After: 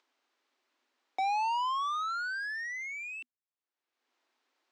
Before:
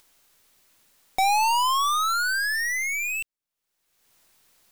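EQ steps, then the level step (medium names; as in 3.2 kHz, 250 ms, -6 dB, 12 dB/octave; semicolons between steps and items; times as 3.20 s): rippled Chebyshev high-pass 240 Hz, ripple 3 dB; distance through air 160 m; -7.5 dB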